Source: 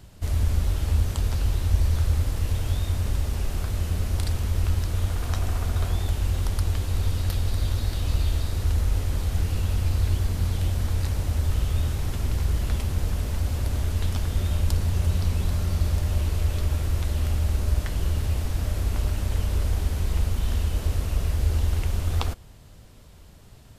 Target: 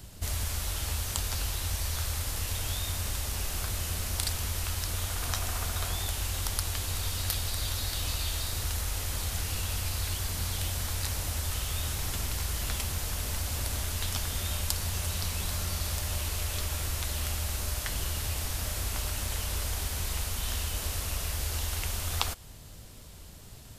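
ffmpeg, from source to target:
ffmpeg -i in.wav -filter_complex "[0:a]highshelf=frequency=3800:gain=9.5,acrossover=split=640|4400[link_01][link_02][link_03];[link_01]acompressor=threshold=-31dB:ratio=6[link_04];[link_04][link_02][link_03]amix=inputs=3:normalize=0" out.wav

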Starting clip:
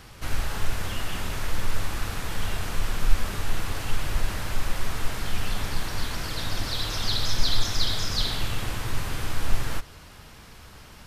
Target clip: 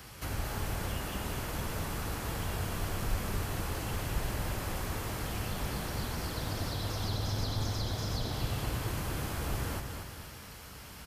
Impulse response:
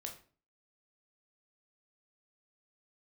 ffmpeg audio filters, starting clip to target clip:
-filter_complex "[0:a]highshelf=frequency=11000:gain=11,bandreject=frequency=3700:width=27,acrossover=split=230|980[link_01][link_02][link_03];[link_03]acompressor=threshold=-40dB:ratio=6[link_04];[link_01][link_02][link_04]amix=inputs=3:normalize=0,highpass=49,aecho=1:1:232|464|696|928|1160|1392:0.501|0.236|0.111|0.052|0.0245|0.0115,volume=-2dB"

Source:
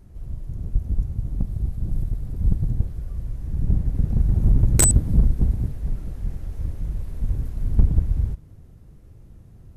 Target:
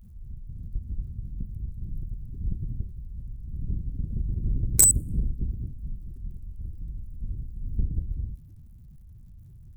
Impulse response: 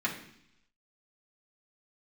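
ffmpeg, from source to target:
-af "aeval=exprs='val(0)+0.5*0.0266*sgn(val(0))':channel_layout=same,aemphasis=mode=production:type=75kf,afftdn=noise_reduction=28:noise_floor=-26,volume=-10.5dB"

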